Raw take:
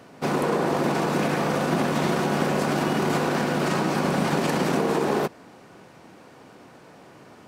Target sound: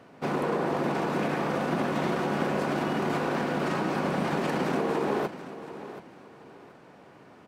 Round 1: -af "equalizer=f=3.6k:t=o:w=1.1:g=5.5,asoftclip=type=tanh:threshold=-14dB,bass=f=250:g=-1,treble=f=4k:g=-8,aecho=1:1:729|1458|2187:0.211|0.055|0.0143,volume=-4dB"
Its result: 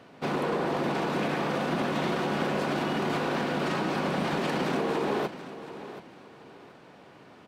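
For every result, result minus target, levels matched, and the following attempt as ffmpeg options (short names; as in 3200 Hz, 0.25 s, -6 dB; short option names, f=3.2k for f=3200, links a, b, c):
soft clip: distortion +15 dB; 4000 Hz band +4.5 dB
-af "equalizer=f=3.6k:t=o:w=1.1:g=5.5,asoftclip=type=tanh:threshold=-5.5dB,bass=f=250:g=-1,treble=f=4k:g=-8,aecho=1:1:729|1458|2187:0.211|0.055|0.0143,volume=-4dB"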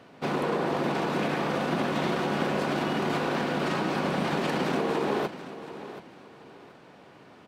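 4000 Hz band +4.0 dB
-af "asoftclip=type=tanh:threshold=-5.5dB,bass=f=250:g=-1,treble=f=4k:g=-8,aecho=1:1:729|1458|2187:0.211|0.055|0.0143,volume=-4dB"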